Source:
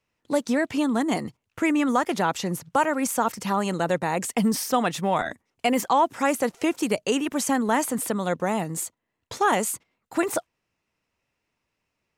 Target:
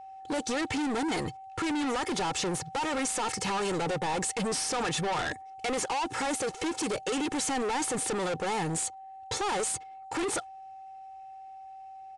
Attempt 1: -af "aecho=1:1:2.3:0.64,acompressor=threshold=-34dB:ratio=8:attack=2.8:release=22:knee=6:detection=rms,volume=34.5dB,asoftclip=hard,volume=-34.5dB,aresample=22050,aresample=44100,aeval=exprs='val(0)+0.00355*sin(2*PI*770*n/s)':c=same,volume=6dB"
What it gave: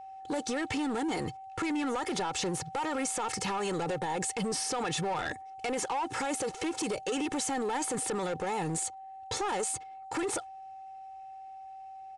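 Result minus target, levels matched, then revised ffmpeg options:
compressor: peak gain reduction +10 dB
-af "aecho=1:1:2.3:0.64,acompressor=threshold=-22.5dB:ratio=8:attack=2.8:release=22:knee=6:detection=rms,volume=34.5dB,asoftclip=hard,volume=-34.5dB,aresample=22050,aresample=44100,aeval=exprs='val(0)+0.00355*sin(2*PI*770*n/s)':c=same,volume=6dB"

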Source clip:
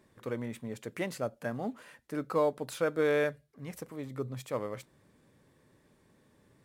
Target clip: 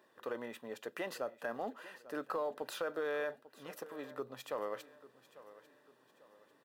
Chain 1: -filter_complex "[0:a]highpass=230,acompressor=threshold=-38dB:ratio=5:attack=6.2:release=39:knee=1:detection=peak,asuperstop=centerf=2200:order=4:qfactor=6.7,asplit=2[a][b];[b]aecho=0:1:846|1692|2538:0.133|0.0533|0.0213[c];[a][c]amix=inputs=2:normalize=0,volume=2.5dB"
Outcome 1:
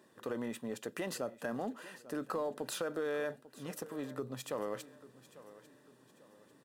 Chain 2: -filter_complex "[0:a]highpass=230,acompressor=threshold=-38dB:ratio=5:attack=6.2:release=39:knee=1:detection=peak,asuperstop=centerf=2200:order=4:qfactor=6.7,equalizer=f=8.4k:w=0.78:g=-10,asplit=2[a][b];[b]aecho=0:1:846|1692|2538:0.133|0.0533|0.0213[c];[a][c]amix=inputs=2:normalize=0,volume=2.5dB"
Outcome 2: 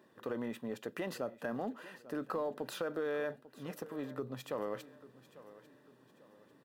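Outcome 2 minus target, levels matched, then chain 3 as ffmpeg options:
250 Hz band +5.5 dB
-filter_complex "[0:a]highpass=490,acompressor=threshold=-38dB:ratio=5:attack=6.2:release=39:knee=1:detection=peak,asuperstop=centerf=2200:order=4:qfactor=6.7,equalizer=f=8.4k:w=0.78:g=-10,asplit=2[a][b];[b]aecho=0:1:846|1692|2538:0.133|0.0533|0.0213[c];[a][c]amix=inputs=2:normalize=0,volume=2.5dB"

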